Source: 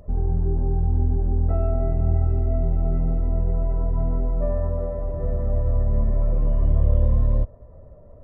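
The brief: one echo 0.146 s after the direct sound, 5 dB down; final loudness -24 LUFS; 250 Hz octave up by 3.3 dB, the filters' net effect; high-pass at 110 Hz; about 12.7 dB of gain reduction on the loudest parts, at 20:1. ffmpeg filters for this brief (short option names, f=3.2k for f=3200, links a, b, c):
-af "highpass=110,equalizer=f=250:t=o:g=5,acompressor=threshold=-35dB:ratio=20,aecho=1:1:146:0.562,volume=14dB"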